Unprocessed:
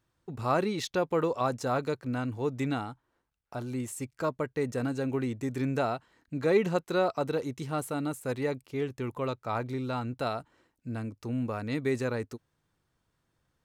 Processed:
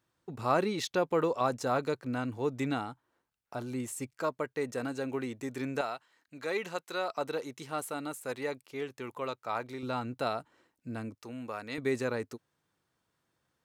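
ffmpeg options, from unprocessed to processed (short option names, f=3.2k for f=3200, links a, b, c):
-af "asetnsamples=n=441:p=0,asendcmd='4.14 highpass f 400;5.81 highpass f 1300;7.1 highpass f 600;9.83 highpass f 200;11.15 highpass f 740;11.78 highpass f 220',highpass=f=170:p=1"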